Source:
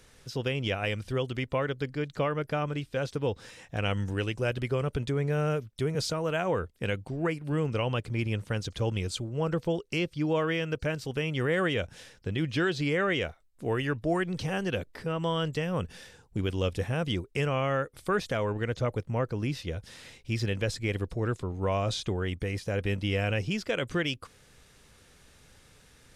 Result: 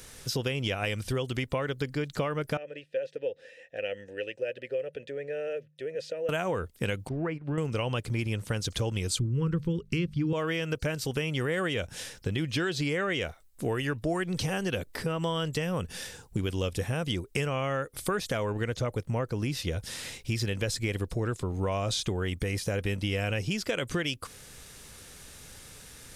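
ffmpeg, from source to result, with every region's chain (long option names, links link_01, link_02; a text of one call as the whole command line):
ffmpeg -i in.wav -filter_complex "[0:a]asettb=1/sr,asplit=3[link_01][link_02][link_03];[link_01]atrim=end=2.574[link_04];[link_02]atrim=start=2.57:end=6.29,asetpts=PTS-STARTPTS,afade=type=in:duration=0.004:curve=qsin,afade=type=out:start_time=3.716:duration=0.004:curve=qsin,asplit=3[link_05][link_06][link_07];[link_05]bandpass=frequency=530:width_type=q:width=8,volume=0dB[link_08];[link_06]bandpass=frequency=1840:width_type=q:width=8,volume=-6dB[link_09];[link_07]bandpass=frequency=2480:width_type=q:width=8,volume=-9dB[link_10];[link_08][link_09][link_10]amix=inputs=3:normalize=0,bandreject=frequency=75.49:width_type=h:width=4,bandreject=frequency=150.98:width_type=h:width=4[link_11];[link_03]atrim=start=6.286[link_12];[link_04][link_11]acrossfade=duration=0.004:curve1=hsin:curve2=qsin[link_13];[link_13][link_12]acrossfade=duration=0.004:curve1=qsin:curve2=hsin,asettb=1/sr,asplit=3[link_14][link_15][link_16];[link_14]atrim=end=7.094[link_17];[link_15]atrim=start=7.09:end=7.58,asetpts=PTS-STARTPTS,afade=type=in:duration=0.004:curve=qsin,afade=type=out:start_time=0.486:duration=0.004:curve=qsin,agate=range=-9dB:threshold=-37dB:ratio=16:release=100:detection=peak,lowpass=2200,acompressor=threshold=-39dB:ratio=1.5:attack=3.2:release=140:knee=1:detection=peak[link_18];[link_16]atrim=start=7.576[link_19];[link_17][link_18]acrossfade=duration=0.004:curve1=hsin:curve2=qsin[link_20];[link_20][link_19]acrossfade=duration=0.004:curve1=qsin:curve2=hsin,asettb=1/sr,asplit=3[link_21][link_22][link_23];[link_21]atrim=end=9.194[link_24];[link_22]atrim=start=9.19:end=10.33,asetpts=PTS-STARTPTS,afade=type=in:duration=0.004:curve=qsin,afade=type=out:start_time=1.136:duration=0.004:curve=qsin,asuperstop=centerf=690:order=4:qfactor=1.4,bass=frequency=250:gain=12,treble=frequency=4000:gain=-10,bandreject=frequency=50:width_type=h:width=6,bandreject=frequency=100:width_type=h:width=6,bandreject=frequency=150:width_type=h:width=6,bandreject=frequency=200:width_type=h:width=6[link_25];[link_23]atrim=start=10.326[link_26];[link_24][link_25]acrossfade=duration=0.004:curve1=hsin:curve2=qsin[link_27];[link_27][link_26]acrossfade=duration=0.004:curve1=qsin:curve2=hsin,highshelf=frequency=6400:gain=11.5,acompressor=threshold=-34dB:ratio=4,volume=6.5dB" out.wav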